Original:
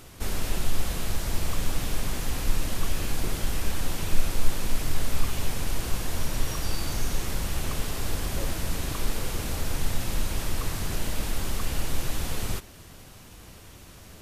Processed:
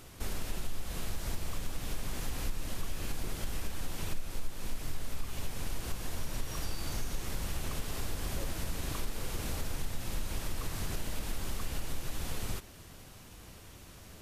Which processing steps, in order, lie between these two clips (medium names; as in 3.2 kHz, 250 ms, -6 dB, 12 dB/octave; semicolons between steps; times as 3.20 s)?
compression 3:1, threshold -26 dBFS, peak gain reduction 12 dB; trim -4 dB